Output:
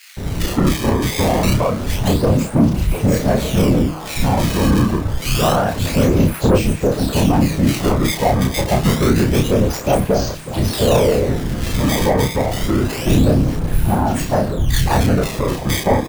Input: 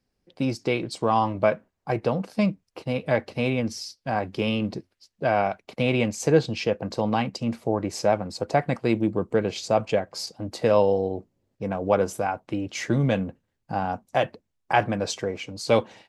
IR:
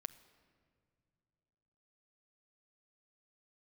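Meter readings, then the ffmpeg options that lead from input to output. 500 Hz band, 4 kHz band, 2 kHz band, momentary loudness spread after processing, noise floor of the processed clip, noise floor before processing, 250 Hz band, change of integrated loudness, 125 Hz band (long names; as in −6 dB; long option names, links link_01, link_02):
+5.5 dB, +10.0 dB, +6.0 dB, 5 LU, −27 dBFS, −78 dBFS, +10.5 dB, +8.5 dB, +14.0 dB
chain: -filter_complex "[0:a]aeval=exprs='val(0)+0.5*0.0531*sgn(val(0))':channel_layout=same,aemphasis=mode=reproduction:type=bsi,afftfilt=real='hypot(re,im)*cos(2*PI*random(0))':imag='hypot(re,im)*sin(2*PI*random(1))':win_size=512:overlap=0.75,bandreject=frequency=157.2:width_type=h:width=4,bandreject=frequency=314.4:width_type=h:width=4,bandreject=frequency=471.6:width_type=h:width=4,bandreject=frequency=628.8:width_type=h:width=4,bandreject=frequency=786:width_type=h:width=4,bandreject=frequency=943.2:width_type=h:width=4,bandreject=frequency=1100.4:width_type=h:width=4,acrusher=samples=18:mix=1:aa=0.000001:lfo=1:lforange=28.8:lforate=0.27,volume=18dB,asoftclip=hard,volume=-18dB,asplit=2[link_01][link_02];[link_02]adelay=31,volume=-4dB[link_03];[link_01][link_03]amix=inputs=2:normalize=0,acrossover=split=1800[link_04][link_05];[link_04]adelay=170[link_06];[link_06][link_05]amix=inputs=2:normalize=0,acontrast=31,adynamicequalizer=threshold=0.0126:dfrequency=800:dqfactor=5.2:tfrequency=800:tqfactor=5.2:attack=5:release=100:ratio=0.375:range=3:mode=cutabove:tftype=bell,dynaudnorm=framelen=130:gausssize=5:maxgain=4.5dB"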